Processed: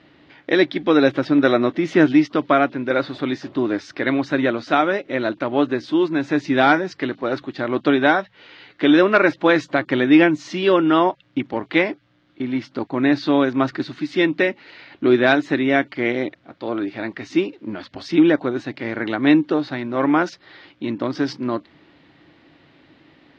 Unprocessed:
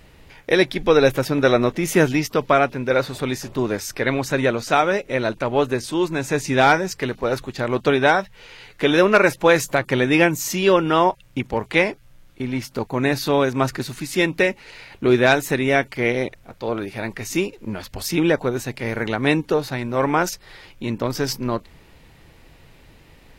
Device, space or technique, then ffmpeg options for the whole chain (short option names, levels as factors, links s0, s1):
kitchen radio: -af "highpass=180,equalizer=f=200:t=q:w=4:g=-3,equalizer=f=300:t=q:w=4:g=9,equalizer=f=460:t=q:w=4:g=-7,equalizer=f=910:t=q:w=4:g=-4,equalizer=f=2500:t=q:w=4:g=-5,lowpass=f=4100:w=0.5412,lowpass=f=4100:w=1.3066,volume=1.12"